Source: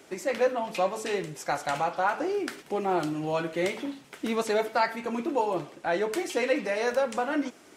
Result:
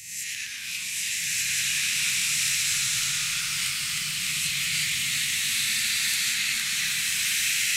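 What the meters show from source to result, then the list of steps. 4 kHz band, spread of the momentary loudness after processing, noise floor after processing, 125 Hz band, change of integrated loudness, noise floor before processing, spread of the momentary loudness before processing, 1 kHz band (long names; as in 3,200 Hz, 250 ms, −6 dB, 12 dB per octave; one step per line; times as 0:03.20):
+17.0 dB, 5 LU, −34 dBFS, −1.0 dB, +5.0 dB, −54 dBFS, 5 LU, −17.5 dB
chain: peak hold with a rise ahead of every peak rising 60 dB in 0.95 s
Chebyshev band-stop filter 110–2,500 Hz, order 3
high-shelf EQ 5,200 Hz +10 dB
delay with pitch and tempo change per echo 95 ms, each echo −1 semitone, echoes 3
slow-attack reverb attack 1,360 ms, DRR −7 dB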